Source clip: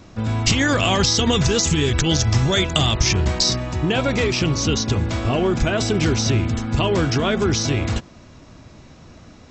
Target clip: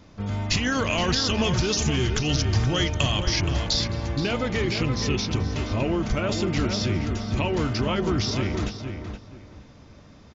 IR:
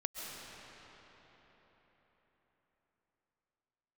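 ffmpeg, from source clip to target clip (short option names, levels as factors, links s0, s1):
-filter_complex "[0:a]asplit=2[s0][s1];[s1]adelay=433,lowpass=f=2600:p=1,volume=0.473,asplit=2[s2][s3];[s3]adelay=433,lowpass=f=2600:p=1,volume=0.24,asplit=2[s4][s5];[s5]adelay=433,lowpass=f=2600:p=1,volume=0.24[s6];[s2][s4][s6]amix=inputs=3:normalize=0[s7];[s0][s7]amix=inputs=2:normalize=0,asetrate=40517,aresample=44100,asplit=2[s8][s9];[s9]aecho=0:1:213:0.0891[s10];[s8][s10]amix=inputs=2:normalize=0,volume=0.501"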